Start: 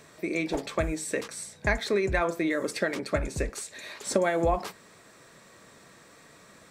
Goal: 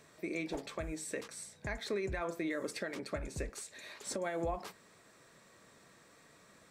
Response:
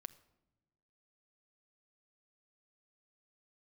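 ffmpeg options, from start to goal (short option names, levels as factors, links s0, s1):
-af "alimiter=limit=0.119:level=0:latency=1:release=189,volume=0.398"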